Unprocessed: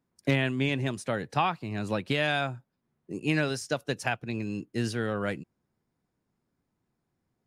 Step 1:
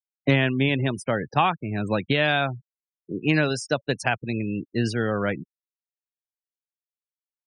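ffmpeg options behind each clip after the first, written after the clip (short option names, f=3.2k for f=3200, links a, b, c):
-af "afftfilt=real='re*gte(hypot(re,im),0.0126)':imag='im*gte(hypot(re,im),0.0126)':win_size=1024:overlap=0.75,volume=5.5dB"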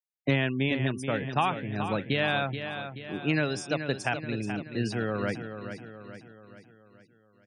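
-af "aecho=1:1:429|858|1287|1716|2145|2574:0.355|0.177|0.0887|0.0444|0.0222|0.0111,volume=-5.5dB"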